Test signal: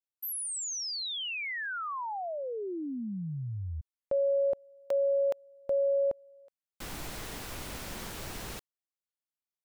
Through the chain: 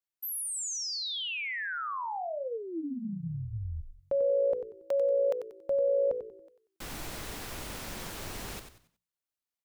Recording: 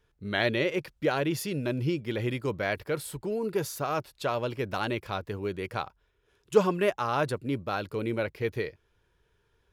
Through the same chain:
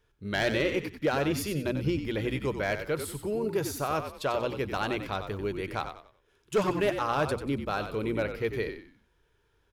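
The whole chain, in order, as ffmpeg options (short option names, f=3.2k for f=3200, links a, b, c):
-filter_complex "[0:a]bandreject=f=60:t=h:w=6,bandreject=f=120:t=h:w=6,bandreject=f=180:t=h:w=6,bandreject=f=240:t=h:w=6,asoftclip=type=hard:threshold=-19.5dB,asplit=5[a][b][c][d][e];[b]adelay=93,afreqshift=-57,volume=-8.5dB[f];[c]adelay=186,afreqshift=-114,volume=-18.4dB[g];[d]adelay=279,afreqshift=-171,volume=-28.3dB[h];[e]adelay=372,afreqshift=-228,volume=-38.2dB[i];[a][f][g][h][i]amix=inputs=5:normalize=0"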